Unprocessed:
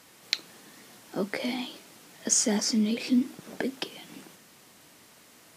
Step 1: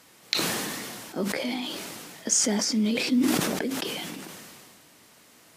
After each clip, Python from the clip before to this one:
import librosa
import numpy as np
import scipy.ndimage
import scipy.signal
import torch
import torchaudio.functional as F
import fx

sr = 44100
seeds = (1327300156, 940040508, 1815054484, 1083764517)

y = fx.sustainer(x, sr, db_per_s=25.0)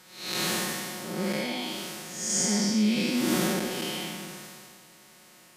y = fx.spec_blur(x, sr, span_ms=244.0)
y = y + 0.95 * np.pad(y, (int(5.5 * sr / 1000.0), 0))[:len(y)]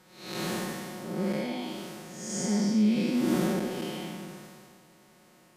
y = fx.tilt_shelf(x, sr, db=5.5, hz=1300.0)
y = y * librosa.db_to_amplitude(-4.5)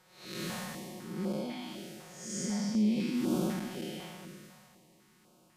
y = fx.filter_held_notch(x, sr, hz=4.0, low_hz=260.0, high_hz=1900.0)
y = y * librosa.db_to_amplitude(-4.0)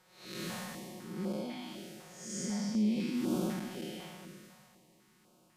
y = fx.hum_notches(x, sr, base_hz=50, count=3)
y = y * librosa.db_to_amplitude(-2.0)